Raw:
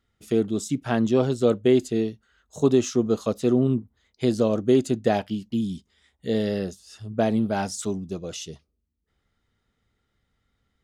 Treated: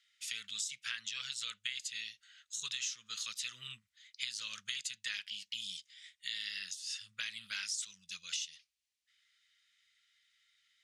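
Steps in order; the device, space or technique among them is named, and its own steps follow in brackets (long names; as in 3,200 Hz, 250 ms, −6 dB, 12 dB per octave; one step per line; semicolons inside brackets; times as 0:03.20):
inverse Chebyshev high-pass filter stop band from 790 Hz, stop band 50 dB
jukebox (low-pass filter 7,800 Hz 12 dB per octave; low shelf with overshoot 240 Hz +6 dB, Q 3; downward compressor 5 to 1, threshold −47 dBFS, peak gain reduction 15 dB)
level +10 dB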